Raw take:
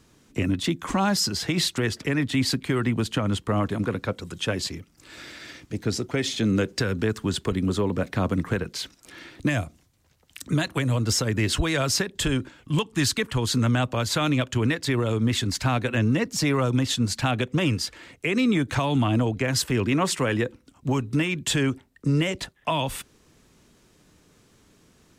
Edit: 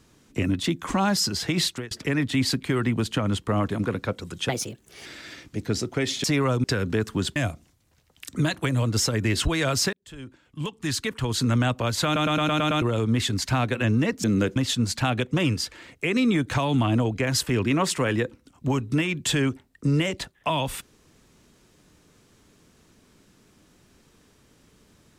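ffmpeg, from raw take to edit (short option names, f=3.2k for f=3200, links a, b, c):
-filter_complex "[0:a]asplit=17[a][b][c][d][e][f][g][h][i][j][k][l][m][n][o][p][q];[a]atrim=end=1.91,asetpts=PTS-STARTPTS,afade=t=out:st=1.66:d=0.25[r];[b]atrim=start=1.91:end=4.494,asetpts=PTS-STARTPTS,afade=t=in:d=0.004:c=hsin[s];[c]atrim=start=4.49:end=5.23,asetpts=PTS-STARTPTS,asetrate=57330,aresample=44100,atrim=end_sample=25103,asetpts=PTS-STARTPTS[t];[d]atrim=start=5.226:end=6.412[u];[e]atrim=start=16.368:end=16.772[v];[f]atrim=start=6.728:end=7.452[w];[g]atrim=start=9.488:end=12.06,asetpts=PTS-STARTPTS,afade=t=out:st=2.568:d=0.004:c=hsin[x];[h]atrim=start=12.06:end=14.292,asetpts=PTS-STARTPTS,afade=t=in:d=1.62[y];[i]atrim=start=14.178:end=14.292[z];[j]atrim=start=14.178:end=14.292[aa];[k]atrim=start=14.178:end=14.292[ab];[l]atrim=start=14.178:end=14.292[ac];[m]atrim=start=14.178:end=14.292[ad];[n]atrim=start=14.178:end=14.292[ae];[o]atrim=start=14.948:end=16.372[af];[p]atrim=start=6.408:end=6.732[ag];[q]atrim=start=16.768[ah];[r][s]concat=n=2:v=0:a=1[ai];[ai][t]acrossfade=d=0.004:c1=hsin:c2=hsin[aj];[aj][u]acrossfade=d=0.004:c1=hsin:c2=hsin[ak];[ak][v]acrossfade=d=0.004:c1=hsin:c2=hsin[al];[al][w]acrossfade=d=0.004:c1=hsin:c2=hsin[am];[x][y]concat=n=2:v=0:a=1[an];[am][an]acrossfade=d=0.004:c1=hsin:c2=hsin[ao];[ao][z]acrossfade=d=0.004:c1=hsin:c2=hsin[ap];[ap][aa]acrossfade=d=0.004:c1=hsin:c2=hsin[aq];[aq][ab]acrossfade=d=0.004:c1=hsin:c2=hsin[ar];[ar][ac]acrossfade=d=0.004:c1=hsin:c2=hsin[as];[as][ad]acrossfade=d=0.004:c1=hsin:c2=hsin[at];[at][ae]acrossfade=d=0.004:c1=hsin:c2=hsin[au];[au][af]acrossfade=d=0.004:c1=hsin:c2=hsin[av];[av][ag]acrossfade=d=0.004:c1=hsin:c2=hsin[aw];[aw][ah]acrossfade=d=0.004:c1=hsin:c2=hsin"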